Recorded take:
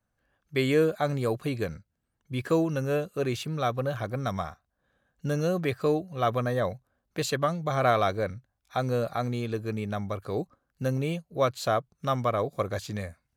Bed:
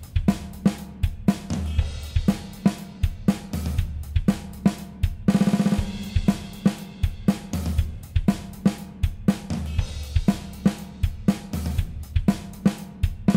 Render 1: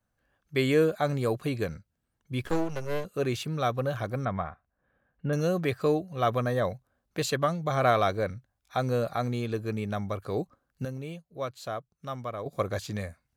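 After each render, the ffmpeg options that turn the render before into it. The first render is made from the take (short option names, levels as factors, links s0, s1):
-filter_complex "[0:a]asettb=1/sr,asplit=3[s0][s1][s2];[s0]atrim=end=2.434[s3];[s1]atrim=start=2.43:end=3.05,asetpts=PTS-STARTPTS,afade=t=in:d=0.004:c=qsin,afade=t=out:st=0.616:d=0.004:c=qsin,aeval=exprs='max(val(0),0)':c=same[s4];[s2]atrim=start=3.046[s5];[s3][s4]acrossfade=d=0.004:c1=hsin:c2=qsin[s6];[s6][s5]acrossfade=d=0.004:c1=qsin:c2=hsin,asettb=1/sr,asplit=3[s7][s8][s9];[s7]atrim=end=4.254[s10];[s8]atrim=start=4.25:end=5.33,asetpts=PTS-STARTPTS,afade=t=in:d=0.004:c=qsin,afade=t=out:st=1.076:d=0.004:c=qsin,lowpass=f=2600:w=0.5412,lowpass=f=2600:w=1.3066[s11];[s9]atrim=start=5.326[s12];[s10][s11]acrossfade=d=0.004:c1=hsin:c2=qsin[s13];[s13][s12]acrossfade=d=0.004:c1=qsin:c2=hsin,asplit=3[s14][s15][s16];[s14]atrim=end=10.852[s17];[s15]atrim=start=10.848:end=12.462,asetpts=PTS-STARTPTS,volume=0.355[s18];[s16]atrim=start=12.458[s19];[s17][s18]acrossfade=d=0.004:c1=hsin:c2=hsin[s20];[s20][s19]acrossfade=d=0.004:c1=hsin:c2=hsin"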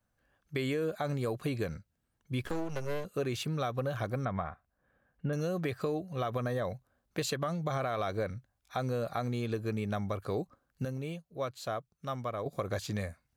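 -af "alimiter=limit=0.106:level=0:latency=1:release=86,acompressor=threshold=0.0355:ratio=6"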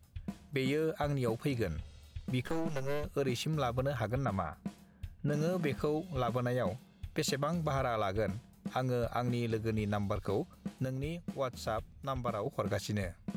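-filter_complex "[1:a]volume=0.0841[s0];[0:a][s0]amix=inputs=2:normalize=0"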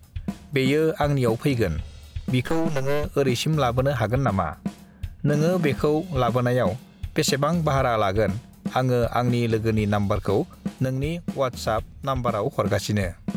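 -af "volume=3.76"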